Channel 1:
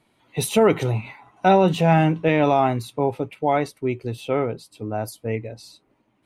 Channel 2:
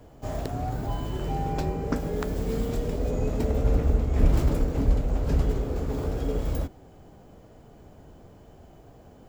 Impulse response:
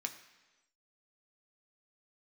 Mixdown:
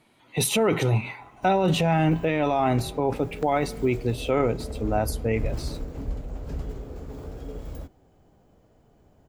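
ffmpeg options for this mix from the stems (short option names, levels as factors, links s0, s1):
-filter_complex "[0:a]volume=1.19,asplit=2[s0][s1];[s1]volume=0.266[s2];[1:a]adelay=1200,volume=0.355[s3];[2:a]atrim=start_sample=2205[s4];[s2][s4]afir=irnorm=-1:irlink=0[s5];[s0][s3][s5]amix=inputs=3:normalize=0,alimiter=limit=0.211:level=0:latency=1:release=11"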